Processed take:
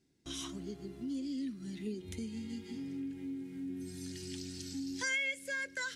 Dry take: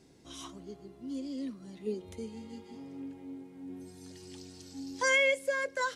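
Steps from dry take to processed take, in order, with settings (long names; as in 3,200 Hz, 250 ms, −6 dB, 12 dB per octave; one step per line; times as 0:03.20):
flat-topped bell 730 Hz −8 dB, from 0:01.23 −14.5 dB
downward compressor 2.5 to 1, threshold −47 dBFS, peak gain reduction 15 dB
noise gate with hold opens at −47 dBFS
level +7.5 dB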